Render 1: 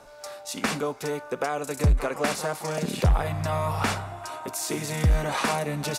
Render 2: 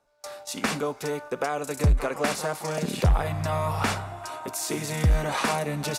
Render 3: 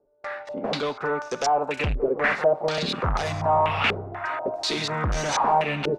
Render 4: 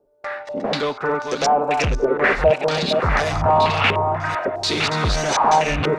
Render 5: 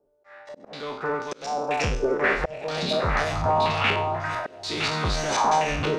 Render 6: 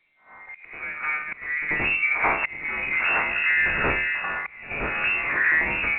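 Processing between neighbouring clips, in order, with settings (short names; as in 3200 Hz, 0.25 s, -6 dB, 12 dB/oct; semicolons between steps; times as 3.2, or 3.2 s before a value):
gate with hold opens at -30 dBFS
low shelf 360 Hz -7 dB; in parallel at -11 dB: sine folder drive 12 dB, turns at -14 dBFS; on the sum: stepped low-pass 4.1 Hz 410–5900 Hz; gain -3 dB
reverse delay 0.544 s, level -5.5 dB; gain +4.5 dB
spectral trails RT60 0.43 s; auto swell 0.383 s; thin delay 98 ms, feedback 83%, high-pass 4700 Hz, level -21 dB; gain -6.5 dB
inverted band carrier 2700 Hz; pre-echo 88 ms -13 dB; A-law 64 kbps 8000 Hz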